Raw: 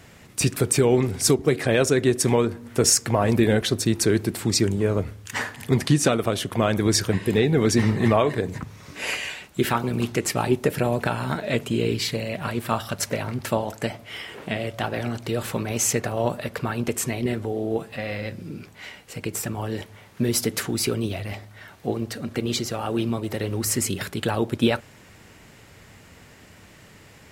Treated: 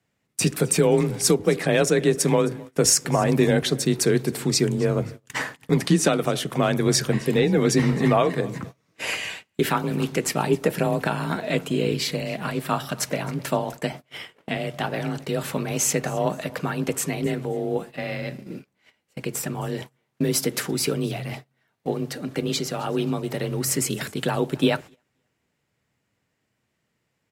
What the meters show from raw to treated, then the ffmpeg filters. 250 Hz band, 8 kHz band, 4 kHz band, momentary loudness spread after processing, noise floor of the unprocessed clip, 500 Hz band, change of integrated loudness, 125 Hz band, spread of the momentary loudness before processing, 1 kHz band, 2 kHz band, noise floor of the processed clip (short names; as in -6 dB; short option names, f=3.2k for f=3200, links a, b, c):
0.0 dB, 0.0 dB, 0.0 dB, 12 LU, -50 dBFS, +0.5 dB, 0.0 dB, -0.5 dB, 11 LU, +0.5 dB, 0.0 dB, -75 dBFS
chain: -af "aecho=1:1:264|528|792:0.0794|0.0286|0.0103,afreqshift=28,agate=range=-26dB:threshold=-35dB:ratio=16:detection=peak"